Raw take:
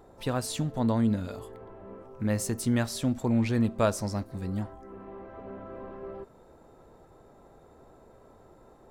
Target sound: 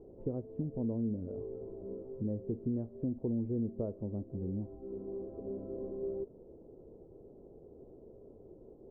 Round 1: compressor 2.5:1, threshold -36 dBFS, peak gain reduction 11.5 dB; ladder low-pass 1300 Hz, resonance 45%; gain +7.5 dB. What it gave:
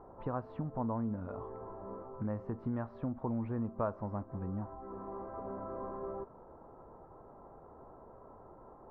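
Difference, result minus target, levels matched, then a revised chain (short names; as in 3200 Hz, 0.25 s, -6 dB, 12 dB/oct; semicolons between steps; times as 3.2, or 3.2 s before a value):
1000 Hz band +19.5 dB
compressor 2.5:1, threshold -36 dBFS, peak gain reduction 11.5 dB; ladder low-pass 500 Hz, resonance 45%; gain +7.5 dB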